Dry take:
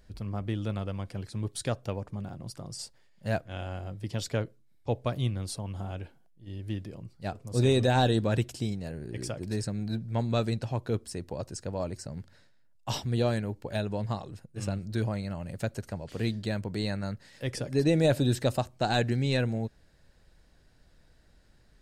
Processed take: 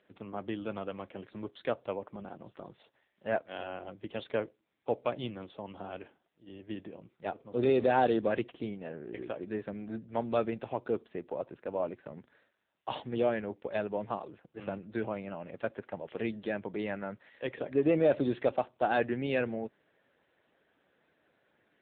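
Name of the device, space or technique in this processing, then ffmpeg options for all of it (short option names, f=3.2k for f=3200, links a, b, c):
telephone: -af "highpass=310,lowpass=3.5k,asoftclip=type=tanh:threshold=-16.5dB,volume=2.5dB" -ar 8000 -c:a libopencore_amrnb -b:a 6700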